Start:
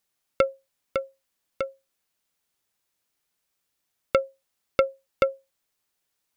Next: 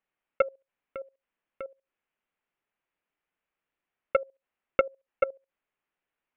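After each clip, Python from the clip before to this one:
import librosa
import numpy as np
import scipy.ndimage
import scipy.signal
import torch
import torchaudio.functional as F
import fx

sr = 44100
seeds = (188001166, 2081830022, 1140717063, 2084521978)

y = scipy.signal.sosfilt(scipy.signal.butter(6, 2800.0, 'lowpass', fs=sr, output='sos'), x)
y = fx.peak_eq(y, sr, hz=94.0, db=-8.0, octaves=1.3)
y = fx.level_steps(y, sr, step_db=18)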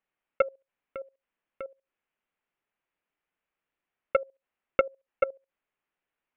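y = x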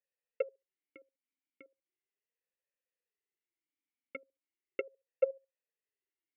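y = fx.vowel_sweep(x, sr, vowels='e-i', hz=0.37)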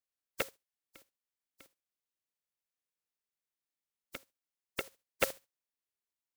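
y = fx.spec_flatten(x, sr, power=0.26)
y = y * librosa.db_to_amplitude(-1.0)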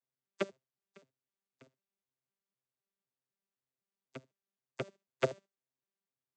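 y = fx.vocoder_arp(x, sr, chord='bare fifth', root=48, every_ms=253)
y = y * librosa.db_to_amplitude(1.5)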